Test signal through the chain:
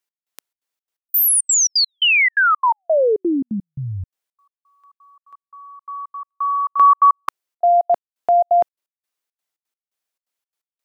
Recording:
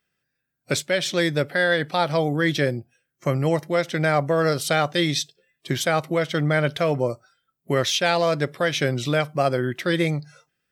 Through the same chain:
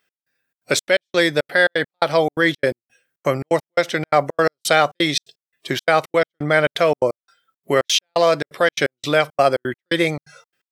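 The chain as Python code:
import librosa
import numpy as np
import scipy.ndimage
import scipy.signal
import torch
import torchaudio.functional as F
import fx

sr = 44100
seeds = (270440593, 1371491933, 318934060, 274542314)

y = fx.bass_treble(x, sr, bass_db=-12, treble_db=-1)
y = fx.step_gate(y, sr, bpm=171, pattern='x..xxx.xx.', floor_db=-60.0, edge_ms=4.5)
y = y * 10.0 ** (6.5 / 20.0)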